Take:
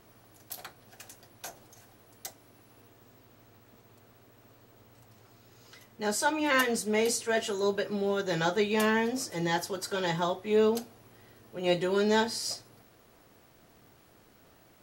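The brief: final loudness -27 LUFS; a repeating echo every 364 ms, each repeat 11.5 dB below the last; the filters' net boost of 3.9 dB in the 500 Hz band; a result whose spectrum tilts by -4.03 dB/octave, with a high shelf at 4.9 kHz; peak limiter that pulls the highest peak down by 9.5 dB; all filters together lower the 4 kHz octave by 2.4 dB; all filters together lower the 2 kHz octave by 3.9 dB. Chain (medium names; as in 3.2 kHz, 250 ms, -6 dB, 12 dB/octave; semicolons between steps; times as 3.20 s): peaking EQ 500 Hz +5 dB; peaking EQ 2 kHz -5.5 dB; peaking EQ 4 kHz -6 dB; treble shelf 4.9 kHz +8.5 dB; peak limiter -20 dBFS; feedback delay 364 ms, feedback 27%, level -11.5 dB; trim +3 dB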